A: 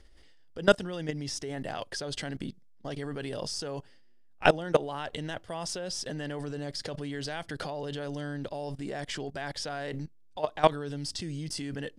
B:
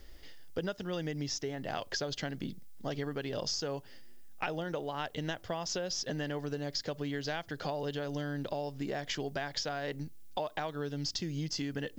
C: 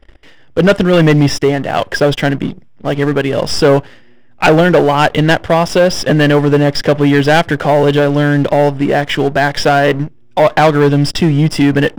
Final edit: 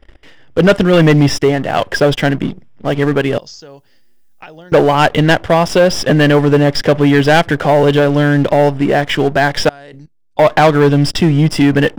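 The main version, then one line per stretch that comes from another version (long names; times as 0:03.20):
C
0:03.38–0:04.72: punch in from B
0:09.69–0:10.39: punch in from A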